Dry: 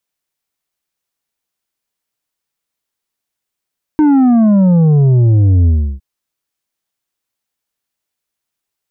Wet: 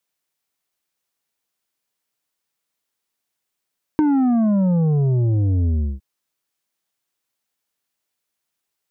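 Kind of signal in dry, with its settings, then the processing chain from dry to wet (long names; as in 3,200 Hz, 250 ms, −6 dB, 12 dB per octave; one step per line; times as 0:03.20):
bass drop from 310 Hz, over 2.01 s, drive 6.5 dB, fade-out 0.33 s, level −7 dB
low-shelf EQ 75 Hz −9 dB
downward compressor, threshold −16 dBFS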